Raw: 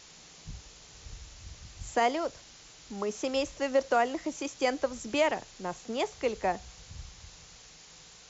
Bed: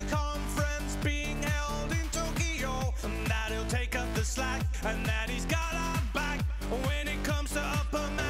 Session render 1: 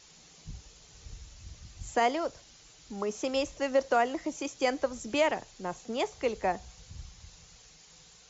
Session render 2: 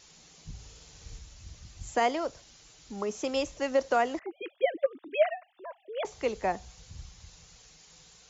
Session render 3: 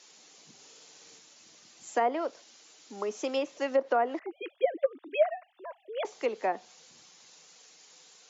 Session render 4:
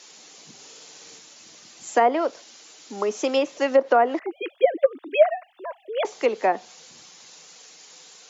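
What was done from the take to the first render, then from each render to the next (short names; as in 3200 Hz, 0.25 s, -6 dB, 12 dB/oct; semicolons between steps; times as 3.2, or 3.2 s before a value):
denoiser 6 dB, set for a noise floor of -53 dBFS
0.53–1.19 flutter echo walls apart 9.4 m, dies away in 0.77 s; 4.19–6.05 sine-wave speech
HPF 250 Hz 24 dB/oct; treble ducked by the level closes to 1300 Hz, closed at -21.5 dBFS
gain +8.5 dB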